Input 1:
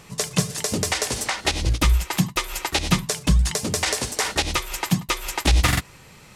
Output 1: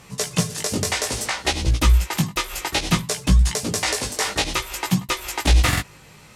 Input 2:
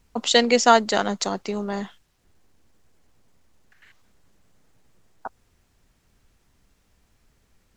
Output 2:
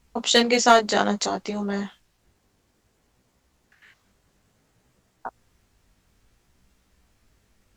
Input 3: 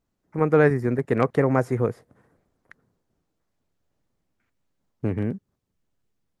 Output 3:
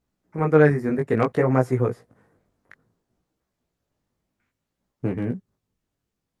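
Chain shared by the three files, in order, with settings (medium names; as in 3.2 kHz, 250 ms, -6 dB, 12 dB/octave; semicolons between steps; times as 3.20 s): one-sided clip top -9 dBFS, bottom -3 dBFS; chorus 0.59 Hz, delay 15.5 ms, depth 4.9 ms; trim +3.5 dB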